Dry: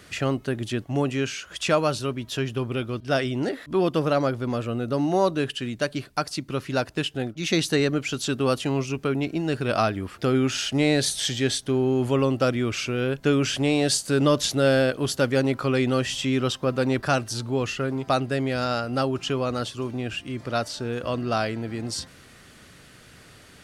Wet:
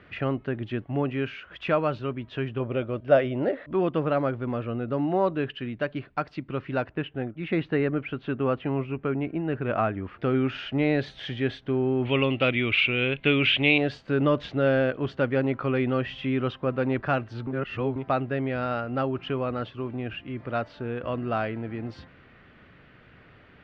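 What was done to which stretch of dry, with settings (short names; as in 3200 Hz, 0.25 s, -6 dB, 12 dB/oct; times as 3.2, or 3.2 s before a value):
2.6–3.72 bell 570 Hz +12 dB 0.45 oct
6.91–10.04 LPF 2600 Hz
12.05–13.78 band shelf 2900 Hz +15.5 dB 1.2 oct
17.47–17.96 reverse
whole clip: LPF 2700 Hz 24 dB/oct; gain -2.5 dB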